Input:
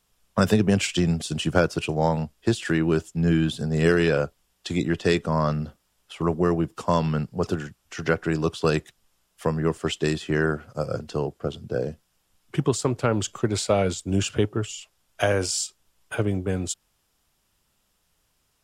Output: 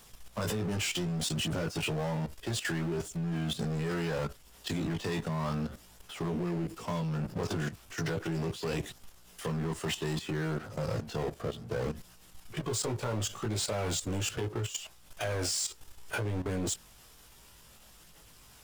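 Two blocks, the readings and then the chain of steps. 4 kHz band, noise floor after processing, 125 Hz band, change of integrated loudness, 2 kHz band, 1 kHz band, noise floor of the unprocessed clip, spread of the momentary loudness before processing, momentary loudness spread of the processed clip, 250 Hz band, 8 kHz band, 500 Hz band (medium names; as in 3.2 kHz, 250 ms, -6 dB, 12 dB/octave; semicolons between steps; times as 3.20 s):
-4.5 dB, -56 dBFS, -8.0 dB, -9.0 dB, -9.0 dB, -10.0 dB, -71 dBFS, 9 LU, 8 LU, -10.0 dB, -3.5 dB, -11.5 dB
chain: power-law waveshaper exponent 0.5; chorus voices 2, 0.33 Hz, delay 18 ms, depth 1.2 ms; level held to a coarse grid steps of 12 dB; trim -8 dB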